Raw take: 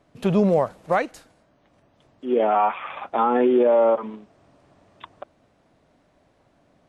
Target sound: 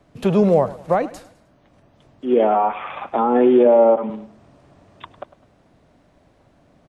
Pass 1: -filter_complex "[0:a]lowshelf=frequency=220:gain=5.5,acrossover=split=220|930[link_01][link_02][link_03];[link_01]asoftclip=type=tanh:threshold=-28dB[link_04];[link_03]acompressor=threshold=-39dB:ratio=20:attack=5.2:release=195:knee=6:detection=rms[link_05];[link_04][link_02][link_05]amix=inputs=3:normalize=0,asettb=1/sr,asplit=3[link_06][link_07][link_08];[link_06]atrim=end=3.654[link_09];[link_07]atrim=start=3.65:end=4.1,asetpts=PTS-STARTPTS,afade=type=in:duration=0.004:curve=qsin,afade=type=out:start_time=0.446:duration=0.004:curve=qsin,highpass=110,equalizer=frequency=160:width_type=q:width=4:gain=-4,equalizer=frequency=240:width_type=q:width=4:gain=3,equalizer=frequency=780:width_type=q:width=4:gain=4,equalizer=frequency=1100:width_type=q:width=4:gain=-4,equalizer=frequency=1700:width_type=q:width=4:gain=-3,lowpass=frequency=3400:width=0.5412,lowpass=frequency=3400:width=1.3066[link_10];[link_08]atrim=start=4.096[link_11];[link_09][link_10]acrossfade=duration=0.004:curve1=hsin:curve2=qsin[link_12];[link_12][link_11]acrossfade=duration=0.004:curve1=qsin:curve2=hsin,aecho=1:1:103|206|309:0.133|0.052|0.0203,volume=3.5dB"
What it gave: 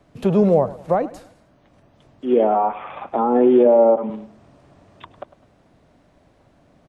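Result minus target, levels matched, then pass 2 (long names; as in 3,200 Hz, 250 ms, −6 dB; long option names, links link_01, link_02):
downward compressor: peak gain reduction +8.5 dB
-filter_complex "[0:a]lowshelf=frequency=220:gain=5.5,acrossover=split=220|930[link_01][link_02][link_03];[link_01]asoftclip=type=tanh:threshold=-28dB[link_04];[link_03]acompressor=threshold=-30dB:ratio=20:attack=5.2:release=195:knee=6:detection=rms[link_05];[link_04][link_02][link_05]amix=inputs=3:normalize=0,asettb=1/sr,asplit=3[link_06][link_07][link_08];[link_06]atrim=end=3.654[link_09];[link_07]atrim=start=3.65:end=4.1,asetpts=PTS-STARTPTS,afade=type=in:duration=0.004:curve=qsin,afade=type=out:start_time=0.446:duration=0.004:curve=qsin,highpass=110,equalizer=frequency=160:width_type=q:width=4:gain=-4,equalizer=frequency=240:width_type=q:width=4:gain=3,equalizer=frequency=780:width_type=q:width=4:gain=4,equalizer=frequency=1100:width_type=q:width=4:gain=-4,equalizer=frequency=1700:width_type=q:width=4:gain=-3,lowpass=frequency=3400:width=0.5412,lowpass=frequency=3400:width=1.3066[link_10];[link_08]atrim=start=4.096[link_11];[link_09][link_10]acrossfade=duration=0.004:curve1=hsin:curve2=qsin[link_12];[link_12][link_11]acrossfade=duration=0.004:curve1=qsin:curve2=hsin,aecho=1:1:103|206|309:0.133|0.052|0.0203,volume=3.5dB"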